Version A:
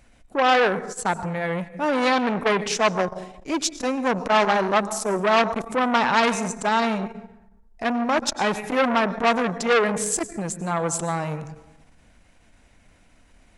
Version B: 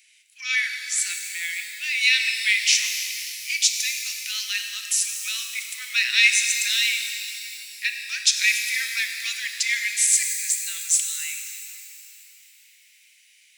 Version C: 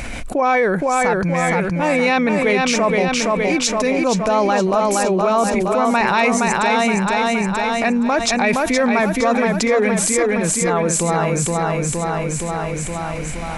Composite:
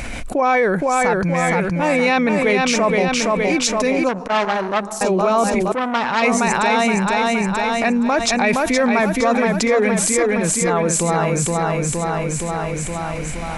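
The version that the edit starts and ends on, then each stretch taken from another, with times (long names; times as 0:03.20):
C
0:04.09–0:05.01: punch in from A
0:05.72–0:06.22: punch in from A
not used: B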